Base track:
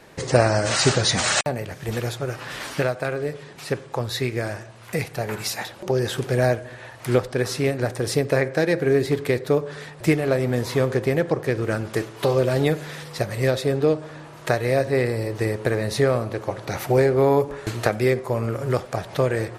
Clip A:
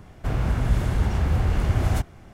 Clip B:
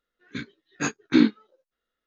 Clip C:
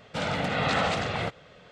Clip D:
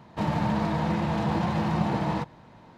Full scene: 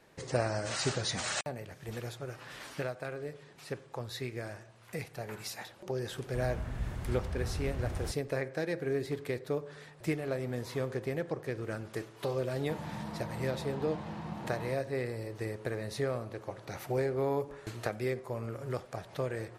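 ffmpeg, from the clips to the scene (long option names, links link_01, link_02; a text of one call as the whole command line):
ffmpeg -i bed.wav -i cue0.wav -i cue1.wav -i cue2.wav -i cue3.wav -filter_complex "[0:a]volume=-13.5dB[link_01];[1:a]atrim=end=2.33,asetpts=PTS-STARTPTS,volume=-15dB,afade=type=in:duration=0.004:curve=hsin,afade=type=out:start_time=2.326:duration=0.004:curve=hsin,adelay=269010S[link_02];[4:a]atrim=end=2.77,asetpts=PTS-STARTPTS,volume=-15dB,afade=type=in:duration=0.004:curve=hsin,afade=type=out:start_time=2.766:duration=0.004:curve=hsin,adelay=12510[link_03];[link_01][link_02][link_03]amix=inputs=3:normalize=0" out.wav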